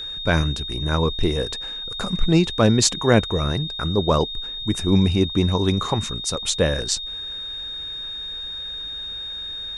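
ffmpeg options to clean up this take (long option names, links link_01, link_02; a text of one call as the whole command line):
ffmpeg -i in.wav -af "bandreject=frequency=3700:width=30" out.wav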